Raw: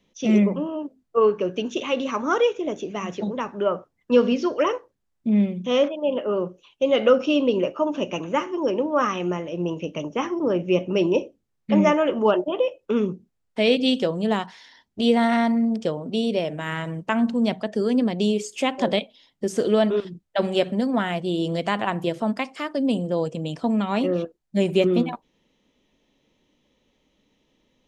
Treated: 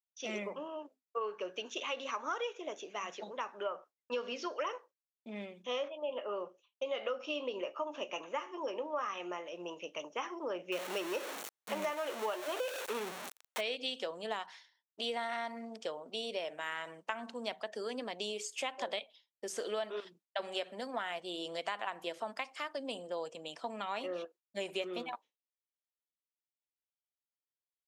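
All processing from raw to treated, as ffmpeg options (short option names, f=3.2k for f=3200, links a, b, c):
-filter_complex "[0:a]asettb=1/sr,asplit=3[a][b][c];[a]atrim=end=5.624[d];[b]atrim=start=5.62:end=9.46,asetpts=PTS-STARTPTS,afade=t=in:d=0.004:c=qsin,afade=t=out:st=3.836:d=0.004:c=qsin,highshelf=f=4.6k:g=-5,bandreject=f=1.5k:w=16,asplit=2[e][f];[f]adelay=20,volume=-13dB[g];[e][g]amix=inputs=2:normalize=0,atrim=end_sample=169344[h];[c]atrim=start=9.456[i];[d][h]acrossfade=d=0.004:c1=hsin:c2=qsin[j];[j][i]acrossfade=d=0.004:c1=qsin:c2=hsin,asettb=1/sr,asplit=3[k][l][m];[k]atrim=end=10.724[n];[l]atrim=start=10.72:end=13.61,asetpts=PTS-STARTPTS,afade=t=in:d=0.004:c=qsin,afade=t=out:st=2.886:d=0.004:c=qsin,aeval=exprs='val(0)+0.5*0.0668*sgn(val(0))':c=same,bandreject=f=4.9k:w=11[o];[m]atrim=start=13.606[p];[n][o]acrossfade=d=0.004:c1=hsin:c2=qsin[q];[q][p]acrossfade=d=0.004:c1=qsin:c2=hsin,agate=range=-33dB:threshold=-39dB:ratio=3:detection=peak,highpass=700,acompressor=threshold=-27dB:ratio=6,volume=-6dB"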